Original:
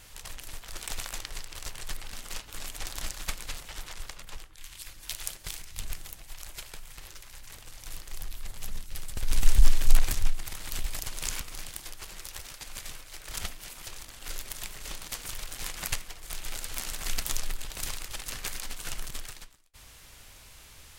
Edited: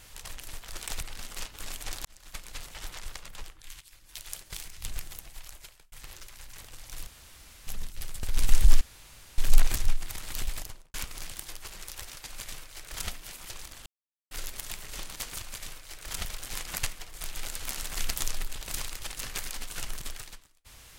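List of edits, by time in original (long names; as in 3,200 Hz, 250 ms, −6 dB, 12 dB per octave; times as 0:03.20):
0:01.01–0:01.95: remove
0:02.99–0:03.74: fade in
0:04.75–0:05.73: fade in, from −14 dB
0:06.25–0:06.86: fade out
0:08.01–0:08.61: fill with room tone
0:09.75: splice in room tone 0.57 s
0:10.87–0:11.31: fade out and dull
0:12.65–0:13.48: duplicate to 0:15.34
0:14.23: splice in silence 0.45 s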